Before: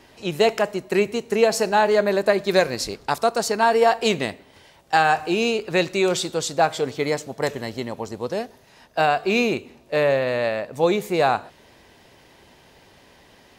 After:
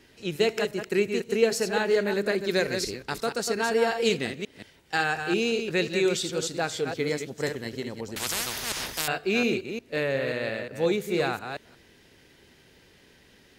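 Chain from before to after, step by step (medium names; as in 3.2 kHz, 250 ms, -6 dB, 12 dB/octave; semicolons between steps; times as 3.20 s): chunks repeated in reverse 178 ms, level -6.5 dB; high-order bell 820 Hz -8.5 dB 1.2 oct; 8.16–9.08 s: spectrum-flattening compressor 10:1; trim -4.5 dB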